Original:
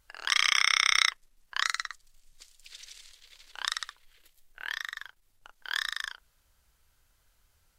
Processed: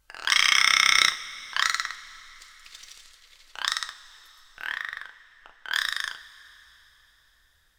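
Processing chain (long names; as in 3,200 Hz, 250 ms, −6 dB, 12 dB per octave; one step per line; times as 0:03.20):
0:04.66–0:05.73: low-pass filter 2,600 Hz 12 dB per octave
leveller curve on the samples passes 1
coupled-rooms reverb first 0.32 s, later 4.1 s, from −19 dB, DRR 6.5 dB
level +1 dB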